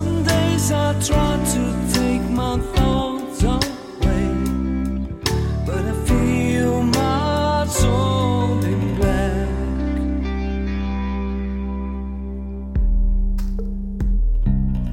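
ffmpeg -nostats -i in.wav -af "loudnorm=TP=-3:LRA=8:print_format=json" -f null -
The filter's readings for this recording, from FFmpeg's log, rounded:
"input_i" : "-21.3",
"input_tp" : "-3.8",
"input_lra" : "5.6",
"input_thresh" : "-31.3",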